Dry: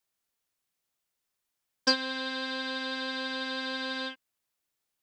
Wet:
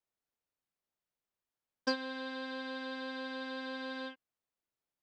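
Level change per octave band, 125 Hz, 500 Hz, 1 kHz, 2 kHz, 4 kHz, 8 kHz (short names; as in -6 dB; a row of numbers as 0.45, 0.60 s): n/a, -3.5 dB, -6.0 dB, -8.5 dB, -12.5 dB, -14.0 dB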